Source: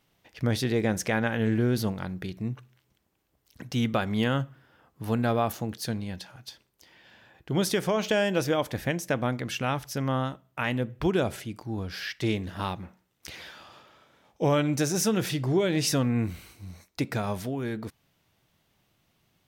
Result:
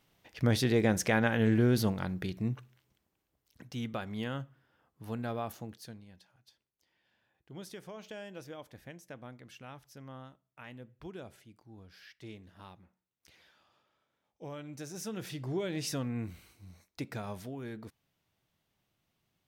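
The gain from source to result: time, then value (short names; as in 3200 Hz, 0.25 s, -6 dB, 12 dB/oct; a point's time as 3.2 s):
2.53 s -1 dB
3.76 s -11 dB
5.65 s -11 dB
6.06 s -20 dB
14.59 s -20 dB
15.48 s -10 dB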